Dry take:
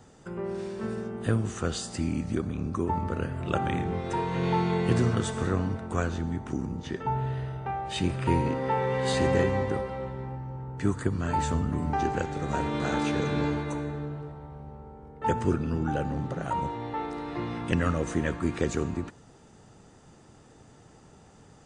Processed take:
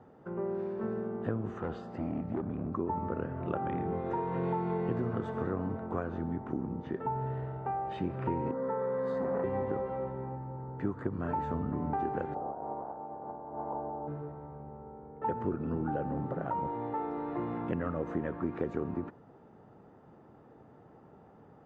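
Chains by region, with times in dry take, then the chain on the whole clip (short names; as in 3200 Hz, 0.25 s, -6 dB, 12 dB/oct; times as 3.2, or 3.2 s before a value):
1.58–2.72 high shelf 6200 Hz -11.5 dB + overloaded stage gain 26.5 dB
8.51–9.44 fixed phaser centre 520 Hz, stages 8 + core saturation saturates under 620 Hz
12.33–14.07 spectral limiter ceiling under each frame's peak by 14 dB + negative-ratio compressor -31 dBFS, ratio -0.5 + ladder low-pass 910 Hz, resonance 65%
whole clip: HPF 230 Hz 6 dB/oct; compressor 4:1, threshold -30 dBFS; LPF 1100 Hz 12 dB/oct; gain +1.5 dB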